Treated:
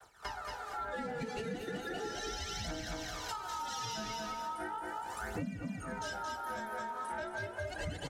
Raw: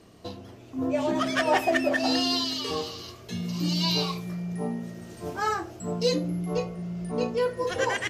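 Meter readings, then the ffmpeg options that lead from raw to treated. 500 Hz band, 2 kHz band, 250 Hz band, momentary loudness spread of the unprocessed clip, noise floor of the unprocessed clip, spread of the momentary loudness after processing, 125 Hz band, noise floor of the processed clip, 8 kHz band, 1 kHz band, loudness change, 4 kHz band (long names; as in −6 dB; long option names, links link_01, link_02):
−14.5 dB, −9.5 dB, −15.0 dB, 14 LU, −48 dBFS, 2 LU, −13.0 dB, −45 dBFS, −6.0 dB, −7.0 dB, −12.0 dB, −14.0 dB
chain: -filter_complex "[0:a]aeval=exprs='val(0)*sin(2*PI*1100*n/s)':channel_layout=same,aphaser=in_gain=1:out_gain=1:delay=4.8:decay=0.68:speed=0.37:type=triangular,equalizer=frequency=9600:width_type=o:width=1:gain=5,asplit=2[link_01][link_02];[link_02]aecho=0:1:224|448|672:0.562|0.124|0.0272[link_03];[link_01][link_03]amix=inputs=2:normalize=0,agate=range=-33dB:threshold=-46dB:ratio=3:detection=peak,acrossover=split=350|3500[link_04][link_05][link_06];[link_05]asoftclip=type=tanh:threshold=-20.5dB[link_07];[link_04][link_07][link_06]amix=inputs=3:normalize=0,acrossover=split=320[link_08][link_09];[link_09]acompressor=threshold=-47dB:ratio=2[link_10];[link_08][link_10]amix=inputs=2:normalize=0,adynamicequalizer=threshold=0.00501:dfrequency=340:dqfactor=0.72:tfrequency=340:tqfactor=0.72:attack=5:release=100:ratio=0.375:range=2.5:mode=boostabove:tftype=bell,highpass=44,acompressor=threshold=-41dB:ratio=12,volume=5dB"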